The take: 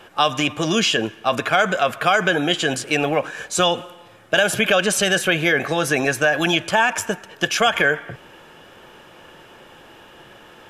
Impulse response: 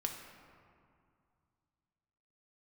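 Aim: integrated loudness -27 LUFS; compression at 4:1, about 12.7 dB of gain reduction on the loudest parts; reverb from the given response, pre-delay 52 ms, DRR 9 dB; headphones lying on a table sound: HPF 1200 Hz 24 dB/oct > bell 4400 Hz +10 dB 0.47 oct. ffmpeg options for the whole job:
-filter_complex "[0:a]acompressor=threshold=-28dB:ratio=4,asplit=2[a][b];[1:a]atrim=start_sample=2205,adelay=52[c];[b][c]afir=irnorm=-1:irlink=0,volume=-10dB[d];[a][d]amix=inputs=2:normalize=0,highpass=f=1.2k:w=0.5412,highpass=f=1.2k:w=1.3066,equalizer=f=4.4k:t=o:w=0.47:g=10,volume=3dB"

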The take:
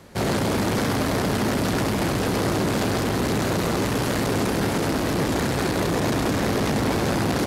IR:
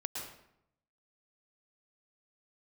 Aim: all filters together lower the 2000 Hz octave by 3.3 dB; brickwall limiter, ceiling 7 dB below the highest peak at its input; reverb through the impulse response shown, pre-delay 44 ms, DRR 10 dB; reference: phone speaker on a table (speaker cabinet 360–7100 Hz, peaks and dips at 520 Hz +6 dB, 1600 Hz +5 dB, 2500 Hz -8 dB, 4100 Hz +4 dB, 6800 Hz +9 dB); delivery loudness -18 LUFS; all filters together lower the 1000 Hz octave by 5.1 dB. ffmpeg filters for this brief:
-filter_complex "[0:a]equalizer=f=1k:t=o:g=-7,equalizer=f=2k:t=o:g=-4,alimiter=limit=-22dB:level=0:latency=1,asplit=2[a][b];[1:a]atrim=start_sample=2205,adelay=44[c];[b][c]afir=irnorm=-1:irlink=0,volume=-11dB[d];[a][d]amix=inputs=2:normalize=0,highpass=f=360:w=0.5412,highpass=f=360:w=1.3066,equalizer=f=520:t=q:w=4:g=6,equalizer=f=1.6k:t=q:w=4:g=5,equalizer=f=2.5k:t=q:w=4:g=-8,equalizer=f=4.1k:t=q:w=4:g=4,equalizer=f=6.8k:t=q:w=4:g=9,lowpass=f=7.1k:w=0.5412,lowpass=f=7.1k:w=1.3066,volume=13dB"

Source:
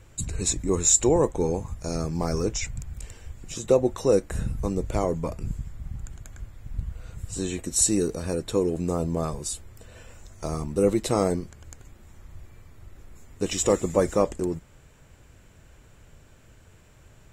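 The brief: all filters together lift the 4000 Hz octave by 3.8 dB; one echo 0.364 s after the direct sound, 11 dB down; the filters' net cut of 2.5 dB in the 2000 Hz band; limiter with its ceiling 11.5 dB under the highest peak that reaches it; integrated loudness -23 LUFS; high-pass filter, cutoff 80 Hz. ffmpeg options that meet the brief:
-af "highpass=80,equalizer=f=2k:t=o:g=-5,equalizer=f=4k:t=o:g=6,alimiter=limit=-15.5dB:level=0:latency=1,aecho=1:1:364:0.282,volume=5.5dB"

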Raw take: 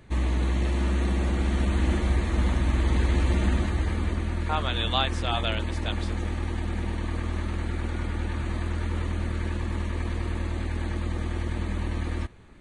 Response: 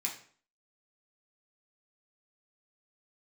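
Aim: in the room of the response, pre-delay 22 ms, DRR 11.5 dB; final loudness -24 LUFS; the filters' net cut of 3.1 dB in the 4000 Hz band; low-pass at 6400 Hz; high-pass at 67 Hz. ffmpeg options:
-filter_complex "[0:a]highpass=67,lowpass=6.4k,equalizer=f=4k:t=o:g=-3.5,asplit=2[a][b];[1:a]atrim=start_sample=2205,adelay=22[c];[b][c]afir=irnorm=-1:irlink=0,volume=-14dB[d];[a][d]amix=inputs=2:normalize=0,volume=5.5dB"

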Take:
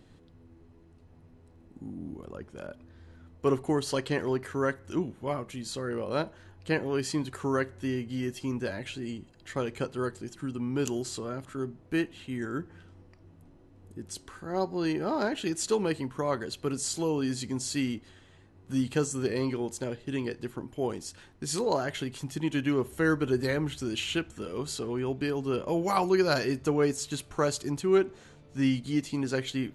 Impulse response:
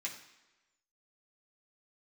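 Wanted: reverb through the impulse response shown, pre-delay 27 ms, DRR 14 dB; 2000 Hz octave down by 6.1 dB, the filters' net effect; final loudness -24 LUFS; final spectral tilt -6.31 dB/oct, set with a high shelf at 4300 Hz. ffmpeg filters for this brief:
-filter_complex "[0:a]equalizer=f=2k:t=o:g=-6.5,highshelf=f=4.3k:g=-9,asplit=2[a][b];[1:a]atrim=start_sample=2205,adelay=27[c];[b][c]afir=irnorm=-1:irlink=0,volume=-14.5dB[d];[a][d]amix=inputs=2:normalize=0,volume=7.5dB"

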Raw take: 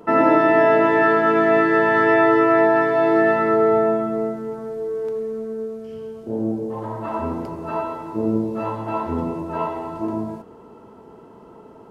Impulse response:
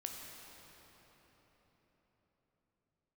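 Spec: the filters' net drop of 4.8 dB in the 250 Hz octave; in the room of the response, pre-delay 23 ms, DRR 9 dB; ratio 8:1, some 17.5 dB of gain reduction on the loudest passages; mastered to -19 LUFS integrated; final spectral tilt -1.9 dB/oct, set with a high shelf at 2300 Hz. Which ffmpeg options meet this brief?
-filter_complex "[0:a]equalizer=f=250:t=o:g=-7.5,highshelf=f=2.3k:g=7.5,acompressor=threshold=-31dB:ratio=8,asplit=2[a][b];[1:a]atrim=start_sample=2205,adelay=23[c];[b][c]afir=irnorm=-1:irlink=0,volume=-7.5dB[d];[a][d]amix=inputs=2:normalize=0,volume=15dB"

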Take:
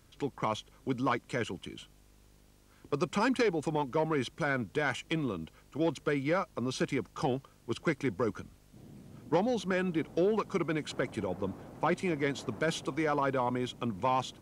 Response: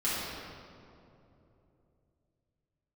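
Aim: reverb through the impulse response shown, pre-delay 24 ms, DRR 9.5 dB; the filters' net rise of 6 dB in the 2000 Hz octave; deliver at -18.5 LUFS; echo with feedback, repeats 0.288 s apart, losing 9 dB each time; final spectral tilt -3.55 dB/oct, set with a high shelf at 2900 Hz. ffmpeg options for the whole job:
-filter_complex "[0:a]equalizer=f=2k:t=o:g=6.5,highshelf=f=2.9k:g=4,aecho=1:1:288|576|864|1152:0.355|0.124|0.0435|0.0152,asplit=2[a][b];[1:a]atrim=start_sample=2205,adelay=24[c];[b][c]afir=irnorm=-1:irlink=0,volume=-19dB[d];[a][d]amix=inputs=2:normalize=0,volume=11.5dB"

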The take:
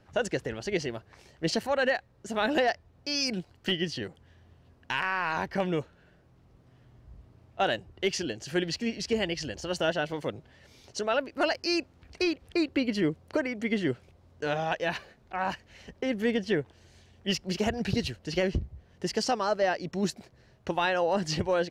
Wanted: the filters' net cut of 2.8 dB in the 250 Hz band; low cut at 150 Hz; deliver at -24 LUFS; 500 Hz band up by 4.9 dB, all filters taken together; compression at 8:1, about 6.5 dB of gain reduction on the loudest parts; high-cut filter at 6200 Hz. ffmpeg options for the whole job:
-af "highpass=150,lowpass=6.2k,equalizer=f=250:t=o:g=-6.5,equalizer=f=500:t=o:g=7.5,acompressor=threshold=-24dB:ratio=8,volume=7.5dB"

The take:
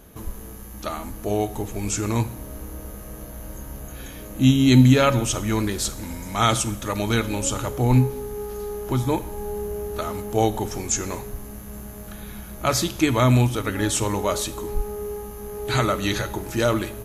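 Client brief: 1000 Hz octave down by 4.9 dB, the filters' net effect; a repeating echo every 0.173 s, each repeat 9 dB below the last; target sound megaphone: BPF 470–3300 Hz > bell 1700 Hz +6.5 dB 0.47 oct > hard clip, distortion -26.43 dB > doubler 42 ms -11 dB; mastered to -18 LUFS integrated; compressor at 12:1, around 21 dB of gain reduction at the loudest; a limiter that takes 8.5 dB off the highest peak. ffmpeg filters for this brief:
-filter_complex "[0:a]equalizer=f=1k:t=o:g=-8,acompressor=threshold=-31dB:ratio=12,alimiter=level_in=4.5dB:limit=-24dB:level=0:latency=1,volume=-4.5dB,highpass=470,lowpass=3.3k,equalizer=f=1.7k:t=o:w=0.47:g=6.5,aecho=1:1:173|346|519|692:0.355|0.124|0.0435|0.0152,asoftclip=type=hard:threshold=-31dB,asplit=2[a][b];[b]adelay=42,volume=-11dB[c];[a][c]amix=inputs=2:normalize=0,volume=26dB"

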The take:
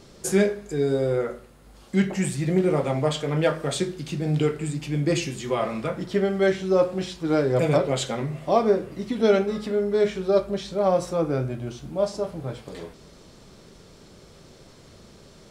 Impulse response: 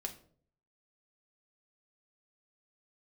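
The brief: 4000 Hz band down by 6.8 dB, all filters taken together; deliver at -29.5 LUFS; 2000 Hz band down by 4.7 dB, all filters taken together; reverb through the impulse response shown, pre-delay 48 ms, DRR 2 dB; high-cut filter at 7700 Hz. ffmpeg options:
-filter_complex "[0:a]lowpass=7.7k,equalizer=f=2k:t=o:g=-4.5,equalizer=f=4k:t=o:g=-7,asplit=2[a][b];[1:a]atrim=start_sample=2205,adelay=48[c];[b][c]afir=irnorm=-1:irlink=0,volume=-0.5dB[d];[a][d]amix=inputs=2:normalize=0,volume=-8dB"

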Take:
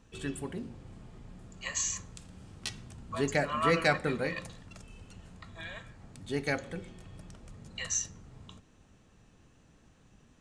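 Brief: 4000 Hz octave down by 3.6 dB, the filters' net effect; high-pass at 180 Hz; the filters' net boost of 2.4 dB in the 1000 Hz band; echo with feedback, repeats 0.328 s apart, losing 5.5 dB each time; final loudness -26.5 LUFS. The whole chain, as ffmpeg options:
-af "highpass=180,equalizer=f=1k:t=o:g=3.5,equalizer=f=4k:t=o:g=-5,aecho=1:1:328|656|984|1312|1640|1968|2296:0.531|0.281|0.149|0.079|0.0419|0.0222|0.0118,volume=7dB"

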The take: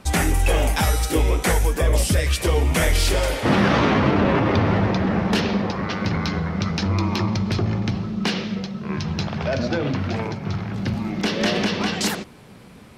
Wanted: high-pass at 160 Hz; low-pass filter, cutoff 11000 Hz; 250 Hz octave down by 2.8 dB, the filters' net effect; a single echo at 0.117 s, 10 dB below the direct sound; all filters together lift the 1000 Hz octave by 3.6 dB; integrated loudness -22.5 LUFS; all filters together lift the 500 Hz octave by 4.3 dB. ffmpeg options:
-af "highpass=160,lowpass=11k,equalizer=f=250:t=o:g=-4,equalizer=f=500:t=o:g=5.5,equalizer=f=1k:t=o:g=3,aecho=1:1:117:0.316,volume=-1dB"

